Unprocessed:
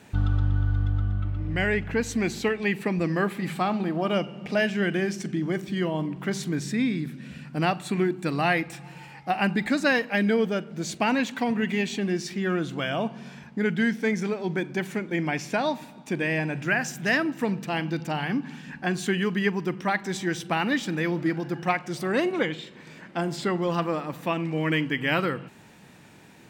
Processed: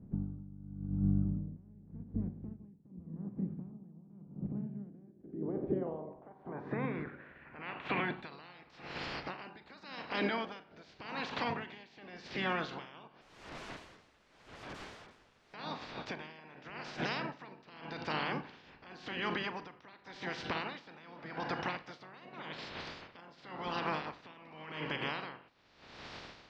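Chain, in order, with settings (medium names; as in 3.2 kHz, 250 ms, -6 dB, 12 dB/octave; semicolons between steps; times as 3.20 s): spectral peaks clipped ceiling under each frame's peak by 25 dB; dynamic bell 970 Hz, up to +4 dB, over -39 dBFS, Q 2.1; compression 3:1, threshold -40 dBFS, peak gain reduction 16.5 dB; peak limiter -30.5 dBFS, peak gain reduction 8 dB; low-pass sweep 190 Hz -> 4.9 kHz, 4.68–8.54 s; 13.21–15.54 s: integer overflow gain 42.5 dB; tape spacing loss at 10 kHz 30 dB; reverberation RT60 0.40 s, pre-delay 22 ms, DRR 13 dB; logarithmic tremolo 0.88 Hz, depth 21 dB; trim +9.5 dB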